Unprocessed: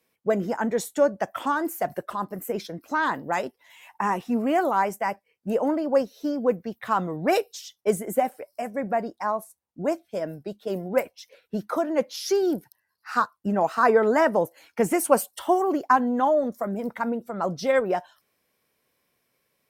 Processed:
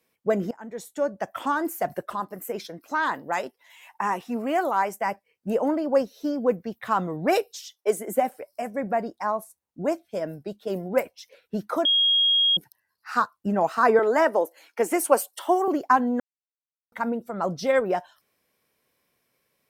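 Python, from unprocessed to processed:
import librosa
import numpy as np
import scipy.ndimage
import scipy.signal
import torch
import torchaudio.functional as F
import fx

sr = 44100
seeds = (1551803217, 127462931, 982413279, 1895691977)

y = fx.low_shelf(x, sr, hz=280.0, db=-8.5, at=(2.2, 5.01))
y = fx.highpass(y, sr, hz=fx.line((7.61, 480.0), (8.33, 130.0)), slope=24, at=(7.61, 8.33), fade=0.02)
y = fx.highpass(y, sr, hz=290.0, slope=24, at=(13.99, 15.68))
y = fx.edit(y, sr, fx.fade_in_from(start_s=0.51, length_s=1.03, floor_db=-22.0),
    fx.bleep(start_s=11.85, length_s=0.72, hz=3270.0, db=-17.0),
    fx.silence(start_s=16.2, length_s=0.72), tone=tone)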